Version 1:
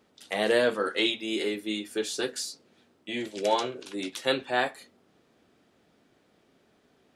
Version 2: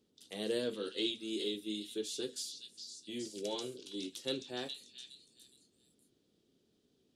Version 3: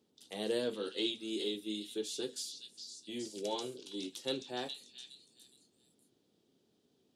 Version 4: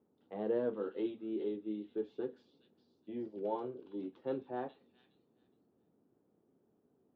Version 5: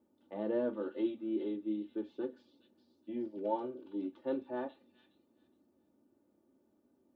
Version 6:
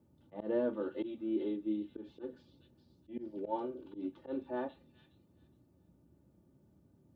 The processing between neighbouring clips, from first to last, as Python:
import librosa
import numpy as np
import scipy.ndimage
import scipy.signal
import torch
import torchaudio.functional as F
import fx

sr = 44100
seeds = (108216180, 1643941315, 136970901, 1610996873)

y1 = fx.band_shelf(x, sr, hz=1200.0, db=-13.5, octaves=2.3)
y1 = fx.echo_stepped(y1, sr, ms=415, hz=4000.0, octaves=0.7, feedback_pct=70, wet_db=-4)
y1 = F.gain(torch.from_numpy(y1), -7.5).numpy()
y2 = scipy.signal.sosfilt(scipy.signal.butter(2, 86.0, 'highpass', fs=sr, output='sos'), y1)
y2 = fx.peak_eq(y2, sr, hz=840.0, db=6.5, octaves=0.71)
y3 = fx.ladder_lowpass(y2, sr, hz=1600.0, resonance_pct=20)
y3 = F.gain(torch.from_numpy(y3), 5.5).numpy()
y4 = y3 + 0.7 * np.pad(y3, (int(3.4 * sr / 1000.0), 0))[:len(y3)]
y5 = fx.auto_swell(y4, sr, attack_ms=111.0)
y5 = fx.dmg_noise_band(y5, sr, seeds[0], low_hz=59.0, high_hz=200.0, level_db=-69.0)
y5 = F.gain(torch.from_numpy(y5), 1.0).numpy()